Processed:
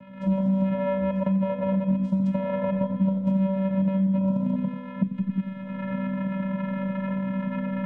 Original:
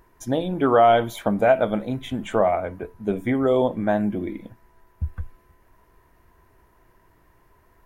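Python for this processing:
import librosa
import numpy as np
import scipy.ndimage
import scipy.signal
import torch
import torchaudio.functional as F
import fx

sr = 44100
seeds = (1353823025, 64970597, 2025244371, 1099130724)

p1 = fx.reverse_delay(x, sr, ms=123, wet_db=-7.5)
p2 = fx.recorder_agc(p1, sr, target_db=-1.0, rise_db_per_s=44.0, max_gain_db=30)
p3 = scipy.signal.savgol_filter(p2, 65, 4, mode='constant')
p4 = fx.vocoder(p3, sr, bands=4, carrier='square', carrier_hz=192.0)
p5 = fx.comb_fb(p4, sr, f0_hz=250.0, decay_s=1.2, harmonics='all', damping=0.0, mix_pct=90)
p6 = p5 + fx.echo_single(p5, sr, ms=88, db=-10.5, dry=0)
p7 = fx.band_squash(p6, sr, depth_pct=100)
y = p7 * librosa.db_to_amplitude(5.0)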